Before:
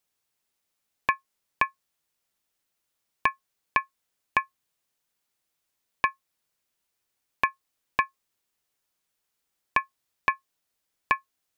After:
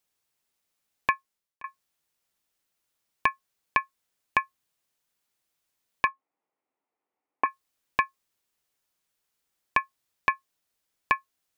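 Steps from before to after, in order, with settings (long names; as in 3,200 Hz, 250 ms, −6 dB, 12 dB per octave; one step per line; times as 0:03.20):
0:01.12–0:01.64: fade out
0:06.07–0:07.46: loudspeaker in its box 250–2,000 Hz, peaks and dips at 280 Hz +8 dB, 440 Hz +4 dB, 800 Hz +7 dB, 1,600 Hz −9 dB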